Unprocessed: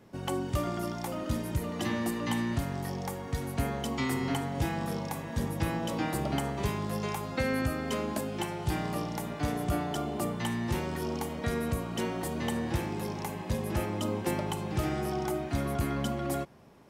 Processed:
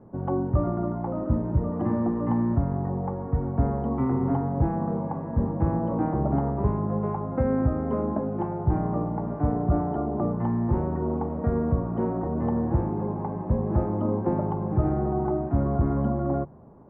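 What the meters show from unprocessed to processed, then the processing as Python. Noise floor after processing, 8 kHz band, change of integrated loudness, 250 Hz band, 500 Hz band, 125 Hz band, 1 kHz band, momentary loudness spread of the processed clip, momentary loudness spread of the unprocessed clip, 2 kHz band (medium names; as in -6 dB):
-33 dBFS, under -40 dB, +6.0 dB, +7.0 dB, +5.5 dB, +8.0 dB, +4.0 dB, 4 LU, 4 LU, -10.5 dB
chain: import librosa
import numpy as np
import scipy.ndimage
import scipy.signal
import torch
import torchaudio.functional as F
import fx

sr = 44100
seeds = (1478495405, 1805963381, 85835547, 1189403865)

y = scipy.signal.sosfilt(scipy.signal.butter(4, 1100.0, 'lowpass', fs=sr, output='sos'), x)
y = fx.low_shelf(y, sr, hz=170.0, db=5.5)
y = fx.hum_notches(y, sr, base_hz=50, count=3)
y = F.gain(torch.from_numpy(y), 5.0).numpy()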